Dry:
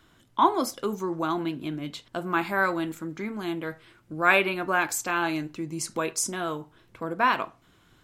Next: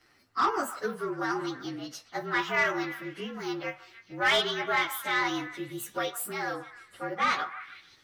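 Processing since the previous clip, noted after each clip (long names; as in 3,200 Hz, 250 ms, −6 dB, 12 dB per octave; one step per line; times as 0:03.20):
partials spread apart or drawn together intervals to 114%
mid-hump overdrive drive 14 dB, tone 5,500 Hz, clips at −10.5 dBFS
echo through a band-pass that steps 151 ms, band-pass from 1,100 Hz, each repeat 0.7 octaves, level −11 dB
level −5 dB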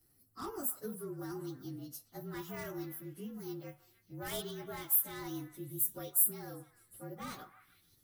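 drawn EQ curve 140 Hz 0 dB, 1,100 Hz −20 dB, 2,200 Hz −24 dB, 6,200 Hz −10 dB, 12,000 Hz +12 dB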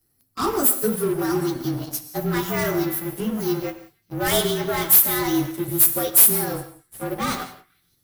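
mains-hum notches 50/100/150/200/250/300 Hz
leveller curve on the samples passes 3
convolution reverb, pre-delay 3 ms, DRR 9.5 dB
level +8 dB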